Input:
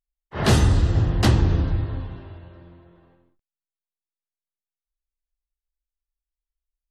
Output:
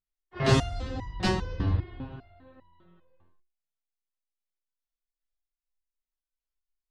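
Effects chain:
low-pass filter 6,300 Hz 12 dB per octave
step-sequenced resonator 5 Hz 96–980 Hz
level +7.5 dB

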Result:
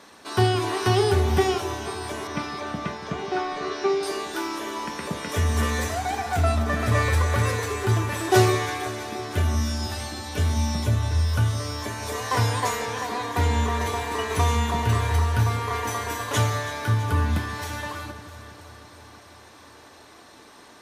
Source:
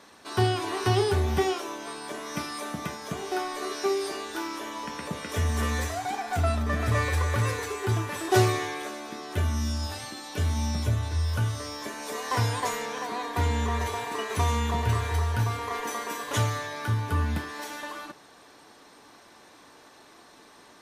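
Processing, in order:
0:02.27–0:04.03: Bessel low-pass filter 4,000 Hz, order 4
on a send: delay that swaps between a low-pass and a high-pass 164 ms, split 960 Hz, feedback 80%, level −12 dB
on the sum: level +3.5 dB

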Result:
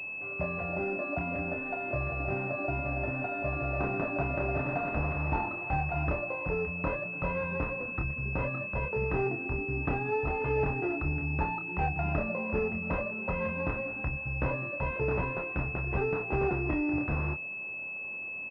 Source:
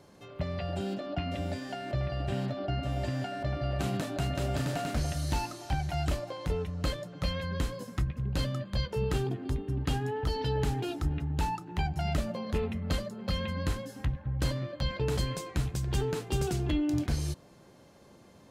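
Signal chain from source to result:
low-shelf EQ 360 Hz −11 dB
double-tracking delay 28 ms −5 dB
switching amplifier with a slow clock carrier 2,600 Hz
level +6 dB

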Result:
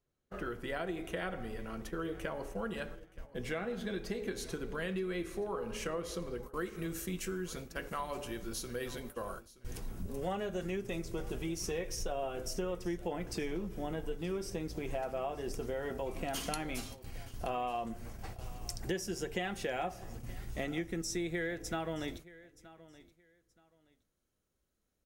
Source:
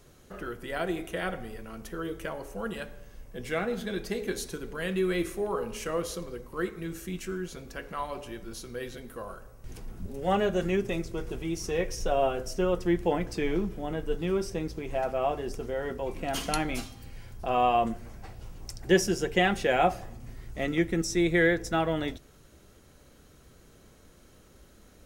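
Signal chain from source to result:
noise gate −43 dBFS, range −28 dB
high-shelf EQ 6,500 Hz −7 dB, from 0:06.43 +5.5 dB
downward compressor 6 to 1, threshold −34 dBFS, peak gain reduction 16.5 dB
repeating echo 924 ms, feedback 22%, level −19 dB

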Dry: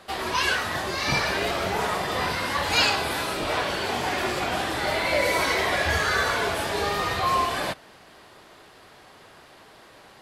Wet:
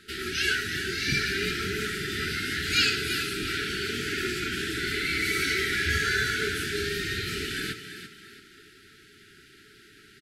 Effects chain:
echo with shifted repeats 336 ms, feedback 36%, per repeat +42 Hz, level −10 dB
brick-wall band-stop 450–1,300 Hz
level −1.5 dB

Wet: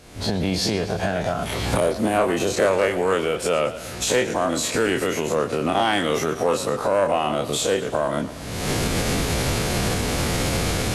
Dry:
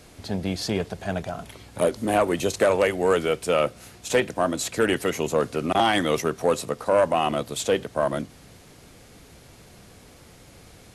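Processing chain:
every bin's largest magnitude spread in time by 60 ms
camcorder AGC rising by 46 dB per second
high-shelf EQ 11,000 Hz −5 dB
feedback echo with a swinging delay time 115 ms, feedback 58%, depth 140 cents, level −14.5 dB
level −3 dB

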